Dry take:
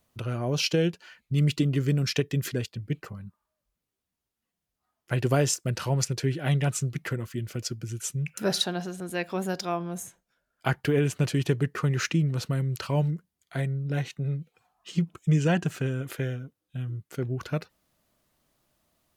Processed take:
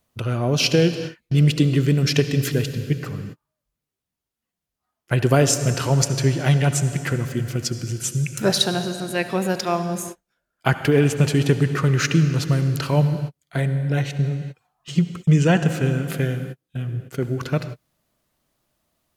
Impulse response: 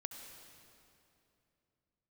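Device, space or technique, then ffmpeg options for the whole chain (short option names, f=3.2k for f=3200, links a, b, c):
keyed gated reverb: -filter_complex "[0:a]asplit=3[a][b][c];[1:a]atrim=start_sample=2205[d];[b][d]afir=irnorm=-1:irlink=0[e];[c]apad=whole_len=845378[f];[e][f]sidechaingate=range=-50dB:threshold=-45dB:ratio=16:detection=peak,volume=5.5dB[g];[a][g]amix=inputs=2:normalize=0"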